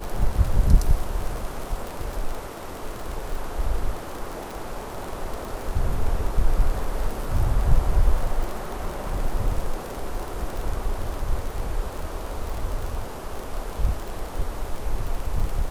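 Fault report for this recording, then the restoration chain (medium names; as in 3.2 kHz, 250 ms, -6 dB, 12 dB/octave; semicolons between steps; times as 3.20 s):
crackle 41 per s -27 dBFS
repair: de-click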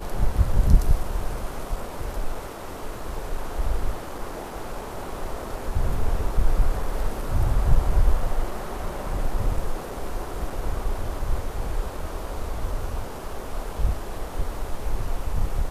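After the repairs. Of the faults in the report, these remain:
nothing left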